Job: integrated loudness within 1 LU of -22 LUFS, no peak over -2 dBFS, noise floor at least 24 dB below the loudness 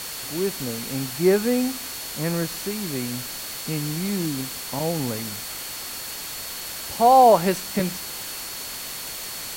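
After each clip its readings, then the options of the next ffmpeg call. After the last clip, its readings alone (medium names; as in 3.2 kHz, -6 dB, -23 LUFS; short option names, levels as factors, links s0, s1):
steady tone 4.4 kHz; tone level -40 dBFS; noise floor -34 dBFS; noise floor target -48 dBFS; loudness -24.0 LUFS; peak level -4.5 dBFS; loudness target -22.0 LUFS
-> -af "bandreject=f=4400:w=30"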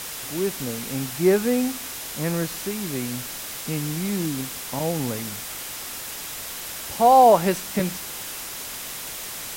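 steady tone not found; noise floor -34 dBFS; noise floor target -49 dBFS
-> -af "afftdn=nr=15:nf=-34"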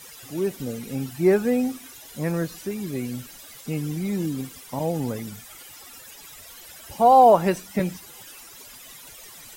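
noise floor -45 dBFS; noise floor target -48 dBFS
-> -af "afftdn=nr=6:nf=-45"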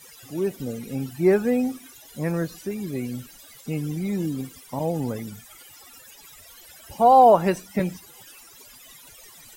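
noise floor -48 dBFS; loudness -23.0 LUFS; peak level -5.0 dBFS; loudness target -22.0 LUFS
-> -af "volume=1.12"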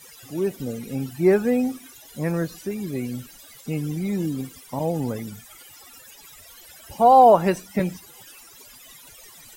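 loudness -22.5 LUFS; peak level -4.0 dBFS; noise floor -47 dBFS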